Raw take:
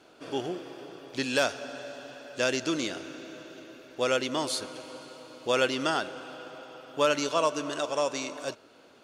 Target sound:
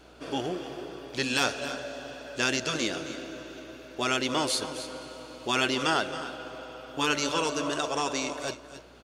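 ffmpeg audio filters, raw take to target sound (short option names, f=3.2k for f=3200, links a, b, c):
-af "afftfilt=real='re*lt(hypot(re,im),0.282)':imag='im*lt(hypot(re,im),0.282)':win_size=1024:overlap=0.75,aecho=1:1:267|281:0.188|0.168,aeval=exprs='val(0)+0.000891*(sin(2*PI*60*n/s)+sin(2*PI*2*60*n/s)/2+sin(2*PI*3*60*n/s)/3+sin(2*PI*4*60*n/s)/4+sin(2*PI*5*60*n/s)/5)':c=same,volume=3dB"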